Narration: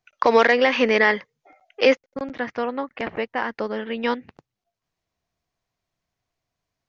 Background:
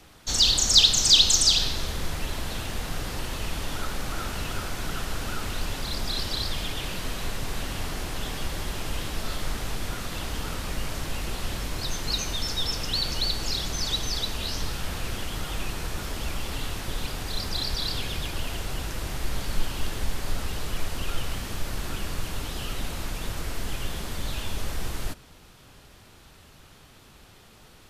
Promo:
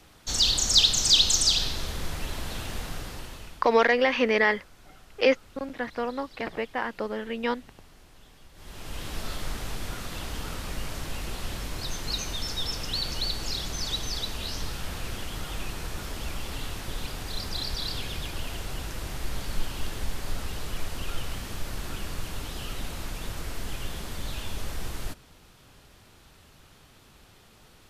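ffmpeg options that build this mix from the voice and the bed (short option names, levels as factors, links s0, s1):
-filter_complex "[0:a]adelay=3400,volume=0.596[s0];[1:a]volume=6.68,afade=t=out:st=2.77:d=0.9:silence=0.105925,afade=t=in:st=8.54:d=0.61:silence=0.112202[s1];[s0][s1]amix=inputs=2:normalize=0"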